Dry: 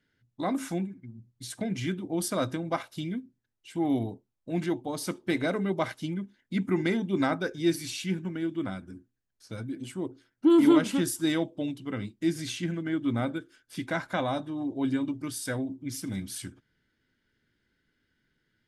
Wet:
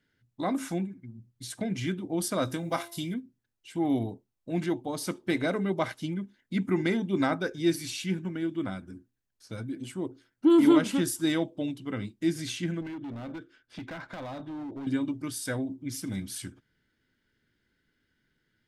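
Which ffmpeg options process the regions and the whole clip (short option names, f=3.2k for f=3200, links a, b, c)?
-filter_complex "[0:a]asettb=1/sr,asplit=3[a][b][c];[a]atrim=end=2.454[d];[b]atrim=start=2.45:end=3.14,asetpts=PTS-STARTPTS,afade=t=in:d=0.004:c=qsin,afade=t=out:st=0.686:d=0.004:c=qsin,aemphasis=mode=production:type=50fm,asplit=2[e][f];[f]adelay=23,volume=-11.5dB[g];[e][g]amix=inputs=2:normalize=0,atrim=end_sample=30429,bandreject=f=341.3:t=h:w=4,bandreject=f=682.6:t=h:w=4,bandreject=f=1.0239k:t=h:w=4,bandreject=f=1.3652k:t=h:w=4,bandreject=f=1.7065k:t=h:w=4,bandreject=f=2.0478k:t=h:w=4,bandreject=f=2.3891k:t=h:w=4,bandreject=f=2.7304k:t=h:w=4,bandreject=f=3.0717k:t=h:w=4,bandreject=f=3.413k:t=h:w=4,bandreject=f=3.7543k:t=h:w=4,bandreject=f=4.0956k:t=h:w=4,bandreject=f=4.4369k:t=h:w=4,bandreject=f=4.7782k:t=h:w=4,bandreject=f=5.1195k:t=h:w=4,bandreject=f=5.4608k:t=h:w=4,bandreject=f=5.8021k:t=h:w=4,bandreject=f=6.1434k:t=h:w=4,bandreject=f=6.4847k:t=h:w=4,bandreject=f=6.826k:t=h:w=4,bandreject=f=7.1673k:t=h:w=4,bandreject=f=7.5086k:t=h:w=4,bandreject=f=7.8499k:t=h:w=4,bandreject=f=8.1912k:t=h:w=4,bandreject=f=8.5325k:t=h:w=4,bandreject=f=8.8738k:t=h:w=4,bandreject=f=9.2151k:t=h:w=4[h];[c]atrim=start=3.136[i];[d][h]acrossfade=d=0.004:c1=hsin:c2=qsin[j];[j][i]acrossfade=d=0.004:c1=qsin:c2=hsin,asettb=1/sr,asplit=3[k][l][m];[k]atrim=end=12.814[n];[l]atrim=start=12.81:end=14.87,asetpts=PTS-STARTPTS,afade=t=in:d=0.004:c=qsin,afade=t=out:st=2.056:d=0.004:c=qsin,lowpass=3.8k,acompressor=threshold=-31dB:ratio=12:attack=3.2:release=140:knee=1:detection=peak,volume=35dB,asoftclip=hard,volume=-35dB[o];[m]atrim=start=14.866[p];[n][o]acrossfade=d=0.004:c1=hsin:c2=qsin[q];[q][p]acrossfade=d=0.004:c1=qsin:c2=hsin"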